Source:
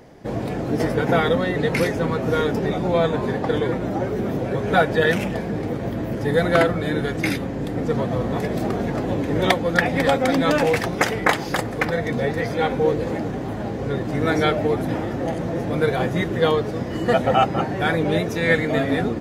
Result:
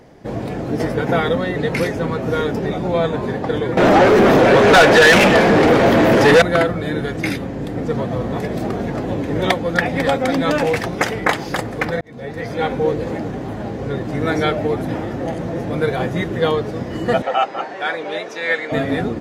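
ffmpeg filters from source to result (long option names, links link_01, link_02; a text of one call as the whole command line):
ffmpeg -i in.wav -filter_complex "[0:a]asettb=1/sr,asplit=3[link_01][link_02][link_03];[link_01]atrim=end=3.774[link_04];[link_02]atrim=start=3.77:end=6.42,asetpts=PTS-STARTPTS,afade=type=in:duration=0.004:curve=qsin,afade=type=out:start_time=2.646:duration=0.004:curve=qsin,asplit=2[link_05][link_06];[link_06]highpass=frequency=720:poles=1,volume=30dB,asoftclip=type=tanh:threshold=-3dB[link_07];[link_05][link_07]amix=inputs=2:normalize=0,lowpass=frequency=5100:poles=1,volume=-6dB[link_08];[link_03]atrim=start=6.416[link_09];[link_04][link_08]acrossfade=duration=0.004:curve1=hsin:curve2=qsin[link_10];[link_10][link_09]acrossfade=duration=0.004:curve1=qsin:curve2=hsin,asettb=1/sr,asplit=3[link_11][link_12][link_13];[link_11]atrim=end=17.224[link_14];[link_12]atrim=start=17.22:end=18.72,asetpts=PTS-STARTPTS,afade=type=in:duration=0.004:curve=qsin,afade=type=out:start_time=1.496:duration=0.004:curve=qsin,highpass=560,lowpass=6600[link_15];[link_13]atrim=start=18.716[link_16];[link_14][link_15]acrossfade=duration=0.004:curve1=hsin:curve2=qsin[link_17];[link_17][link_16]acrossfade=duration=0.004:curve1=qsin:curve2=hsin,asplit=2[link_18][link_19];[link_18]atrim=end=12.01,asetpts=PTS-STARTPTS,afade=type=out:start_time=12.006:duration=0.004:curve=hsin[link_20];[link_19]atrim=start=12.01,asetpts=PTS-STARTPTS,afade=type=in:duration=0.62[link_21];[link_20][link_21]concat=n=2:v=0:a=1,highshelf=frequency=11000:gain=-4.5,volume=1dB" out.wav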